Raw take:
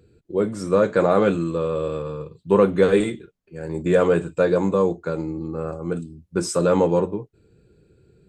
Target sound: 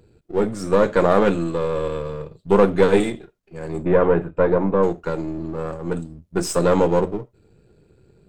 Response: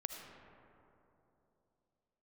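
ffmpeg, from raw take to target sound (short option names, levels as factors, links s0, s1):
-filter_complex "[0:a]aeval=exprs='if(lt(val(0),0),0.447*val(0),val(0))':c=same,asplit=3[s0][s1][s2];[s0]afade=t=out:st=3.83:d=0.02[s3];[s1]lowpass=1700,afade=t=in:st=3.83:d=0.02,afade=t=out:st=4.82:d=0.02[s4];[s2]afade=t=in:st=4.82:d=0.02[s5];[s3][s4][s5]amix=inputs=3:normalize=0,asplit=2[s6][s7];[1:a]atrim=start_sample=2205,atrim=end_sample=3969[s8];[s7][s8]afir=irnorm=-1:irlink=0,volume=0.398[s9];[s6][s9]amix=inputs=2:normalize=0,volume=1.19"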